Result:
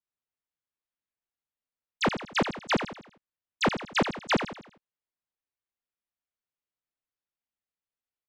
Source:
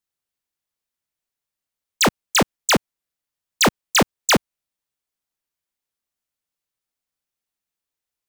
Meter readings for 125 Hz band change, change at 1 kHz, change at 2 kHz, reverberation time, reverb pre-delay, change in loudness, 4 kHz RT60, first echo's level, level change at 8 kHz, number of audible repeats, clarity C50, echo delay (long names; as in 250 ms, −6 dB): −7.5 dB, −7.5 dB, −8.0 dB, no reverb audible, no reverb audible, −10.0 dB, no reverb audible, −9.0 dB, −22.0 dB, 4, no reverb audible, 82 ms